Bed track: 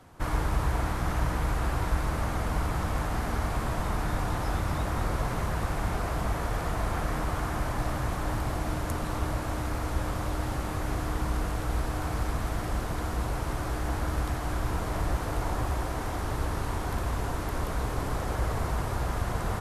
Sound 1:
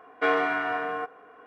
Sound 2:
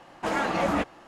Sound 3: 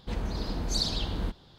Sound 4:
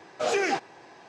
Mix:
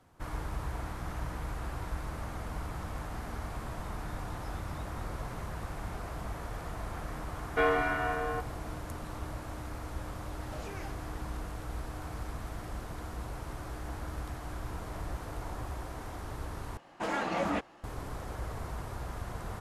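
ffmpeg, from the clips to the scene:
-filter_complex "[0:a]volume=-9.5dB[a];[1:a]equalizer=f=490:t=o:w=0.77:g=3[b];[4:a]acompressor=threshold=-39dB:ratio=6:attack=3.2:release=140:knee=1:detection=peak[c];[a]asplit=2[d][e];[d]atrim=end=16.774[f];[2:a]atrim=end=1.07,asetpts=PTS-STARTPTS,volume=-6dB[g];[e]atrim=start=17.836[h];[b]atrim=end=1.46,asetpts=PTS-STARTPTS,volume=-4.5dB,afade=t=in:d=0.004:c=hsin,afade=t=out:st=1.456:d=0.004:c=hsin,adelay=7350[i];[c]atrim=end=1.08,asetpts=PTS-STARTPTS,volume=-5dB,afade=t=in:d=0.004:c=hsin,afade=t=out:st=1.076:d=0.004:c=hsin,adelay=10330[j];[f][g]acrossfade=d=0.004:c1=hsin:c2=hsin[k];[k][h]acrossfade=d=0.004:c1=hsin:c2=hsin[l];[l][i][j]amix=inputs=3:normalize=0"

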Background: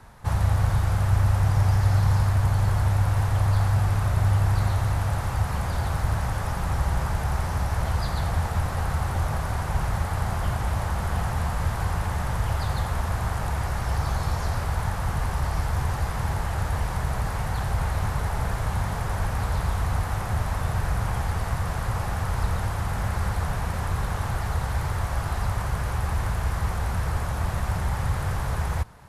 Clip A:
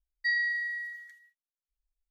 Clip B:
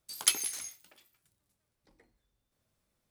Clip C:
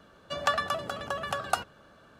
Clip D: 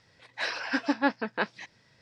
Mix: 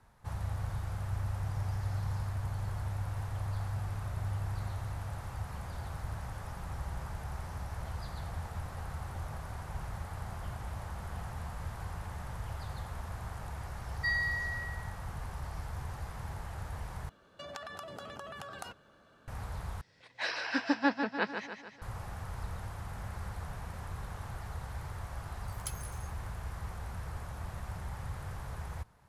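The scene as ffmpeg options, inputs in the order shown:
-filter_complex "[0:a]volume=-14.5dB[a];[3:a]acompressor=threshold=-40dB:ratio=12:attack=14:release=23:knee=1:detection=peak[b];[4:a]aecho=1:1:149|298|447|596|745|894:0.447|0.232|0.121|0.0628|0.0327|0.017[c];[2:a]equalizer=f=3.4k:w=0.9:g=-7[d];[a]asplit=3[e][f][g];[e]atrim=end=17.094[h];[b]atrim=end=2.19,asetpts=PTS-STARTPTS,volume=-6dB[i];[f]atrim=start=19.276:end=19.814[j];[c]atrim=end=2.01,asetpts=PTS-STARTPTS,volume=-3.5dB[k];[g]atrim=start=21.816[l];[1:a]atrim=end=2.1,asetpts=PTS-STARTPTS,volume=-3.5dB,afade=t=in:d=0.004:c=hsin,afade=t=out:st=2.096:d=0.004:c=hsin,adelay=13790[m];[d]atrim=end=3.1,asetpts=PTS-STARTPTS,volume=-14dB,afade=t=in:d=0.004:c=hsin,afade=t=out:st=3.096:d=0.004:c=hsin,adelay=25390[n];[h][i]acrossfade=d=0.004:c1=hsin:c2=hsin[o];[o][j]acrossfade=d=0.004:c1=hsin:c2=hsin[p];[p][k]acrossfade=d=0.004:c1=hsin:c2=hsin[q];[q][l]acrossfade=d=0.004:c1=hsin:c2=hsin[r];[r][m][n]amix=inputs=3:normalize=0"

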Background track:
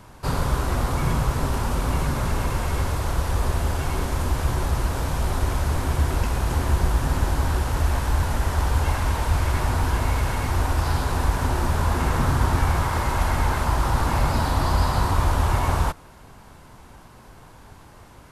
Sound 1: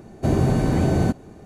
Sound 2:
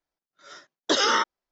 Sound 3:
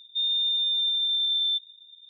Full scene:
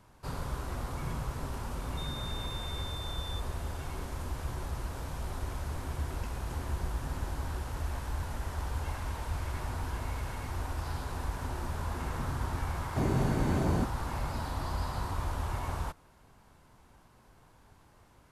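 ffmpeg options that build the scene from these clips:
-filter_complex "[0:a]volume=-13.5dB[a];[3:a]acompressor=threshold=-28dB:ratio=6:attack=3.2:release=140:knee=1:detection=peak,atrim=end=2.09,asetpts=PTS-STARTPTS,volume=-15dB,afade=t=in:d=0.004:c=hsin,afade=t=out:st=2.086:d=0.004:c=hsin,adelay=1820[b];[1:a]atrim=end=1.45,asetpts=PTS-STARTPTS,volume=-10dB,afade=t=in:d=0.004:c=hsin,afade=t=out:st=1.446:d=0.004:c=hsin,adelay=12730[c];[a][b][c]amix=inputs=3:normalize=0"

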